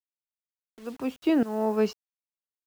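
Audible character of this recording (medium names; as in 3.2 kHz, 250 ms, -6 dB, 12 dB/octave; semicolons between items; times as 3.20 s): tremolo saw up 1.4 Hz, depth 90%; a quantiser's noise floor 10-bit, dither none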